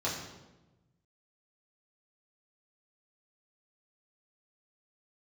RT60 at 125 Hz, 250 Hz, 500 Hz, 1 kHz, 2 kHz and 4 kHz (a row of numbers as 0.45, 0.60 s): 1.8, 1.4, 1.2, 1.0, 0.85, 0.80 s